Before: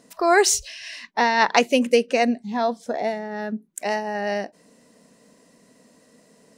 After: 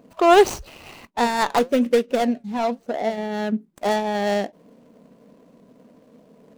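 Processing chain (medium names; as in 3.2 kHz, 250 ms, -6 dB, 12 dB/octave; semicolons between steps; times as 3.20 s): median filter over 25 samples; 1.07–3.18 s: flange 1.1 Hz, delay 2.5 ms, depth 4.8 ms, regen +80%; trim +5.5 dB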